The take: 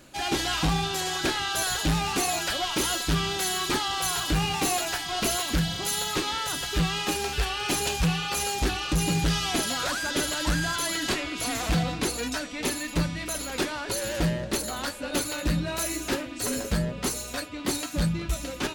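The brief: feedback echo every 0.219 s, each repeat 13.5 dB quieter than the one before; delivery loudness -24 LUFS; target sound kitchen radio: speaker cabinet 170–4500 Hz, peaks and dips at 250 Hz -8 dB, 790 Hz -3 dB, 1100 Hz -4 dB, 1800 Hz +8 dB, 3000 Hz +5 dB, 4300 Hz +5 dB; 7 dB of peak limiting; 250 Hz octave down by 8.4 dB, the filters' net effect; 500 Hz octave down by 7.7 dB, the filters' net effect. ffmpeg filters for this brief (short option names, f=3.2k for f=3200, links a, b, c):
-af "equalizer=f=250:t=o:g=-5.5,equalizer=f=500:t=o:g=-7.5,alimiter=limit=-23dB:level=0:latency=1,highpass=170,equalizer=f=250:t=q:w=4:g=-8,equalizer=f=790:t=q:w=4:g=-3,equalizer=f=1.1k:t=q:w=4:g=-4,equalizer=f=1.8k:t=q:w=4:g=8,equalizer=f=3k:t=q:w=4:g=5,equalizer=f=4.3k:t=q:w=4:g=5,lowpass=f=4.5k:w=0.5412,lowpass=f=4.5k:w=1.3066,aecho=1:1:219|438:0.211|0.0444,volume=5.5dB"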